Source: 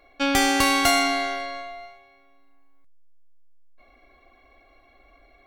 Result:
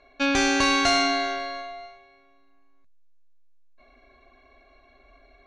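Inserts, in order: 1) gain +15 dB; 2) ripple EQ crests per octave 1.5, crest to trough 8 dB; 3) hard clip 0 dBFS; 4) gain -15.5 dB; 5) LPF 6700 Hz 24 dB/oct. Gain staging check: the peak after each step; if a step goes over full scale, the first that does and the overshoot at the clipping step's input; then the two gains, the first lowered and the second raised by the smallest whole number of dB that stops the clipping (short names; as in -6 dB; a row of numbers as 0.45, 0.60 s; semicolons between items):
+9.5, +9.5, 0.0, -15.5, -13.5 dBFS; step 1, 9.5 dB; step 1 +5 dB, step 4 -5.5 dB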